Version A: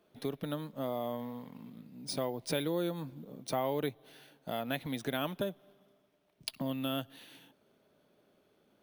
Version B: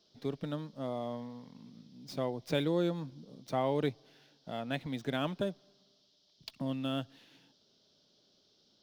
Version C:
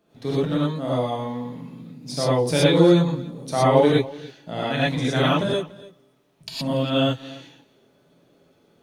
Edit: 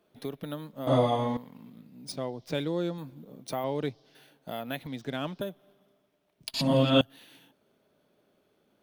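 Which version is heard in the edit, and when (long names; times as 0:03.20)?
A
0:00.87–0:01.37: punch in from C
0:02.12–0:02.98: punch in from B
0:03.64–0:04.15: punch in from B
0:04.87–0:05.41: punch in from B
0:06.54–0:07.01: punch in from C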